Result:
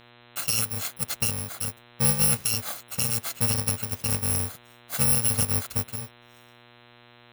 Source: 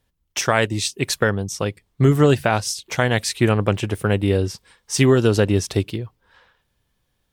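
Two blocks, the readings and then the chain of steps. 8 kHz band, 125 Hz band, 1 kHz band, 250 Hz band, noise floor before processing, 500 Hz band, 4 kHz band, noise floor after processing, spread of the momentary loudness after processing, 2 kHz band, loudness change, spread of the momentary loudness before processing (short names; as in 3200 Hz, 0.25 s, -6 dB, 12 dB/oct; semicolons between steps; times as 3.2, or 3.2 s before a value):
+2.5 dB, -10.5 dB, -12.5 dB, -14.5 dB, -71 dBFS, -19.5 dB, -4.5 dB, -54 dBFS, 12 LU, -12.0 dB, -4.5 dB, 12 LU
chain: FFT order left unsorted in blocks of 128 samples; buzz 120 Hz, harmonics 34, -46 dBFS -2 dB/oct; gain -7.5 dB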